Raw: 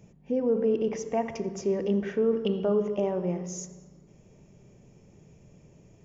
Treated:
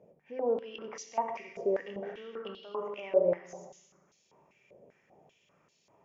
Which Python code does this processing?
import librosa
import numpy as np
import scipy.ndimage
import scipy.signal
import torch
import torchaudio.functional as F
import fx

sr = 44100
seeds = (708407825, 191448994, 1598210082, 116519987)

p1 = fx.rider(x, sr, range_db=10, speed_s=2.0)
p2 = x + F.gain(torch.from_numpy(p1), 2.5).numpy()
p3 = fx.rev_plate(p2, sr, seeds[0], rt60_s=1.4, hf_ratio=0.85, predelay_ms=0, drr_db=7.0)
y = fx.filter_held_bandpass(p3, sr, hz=5.1, low_hz=560.0, high_hz=4200.0)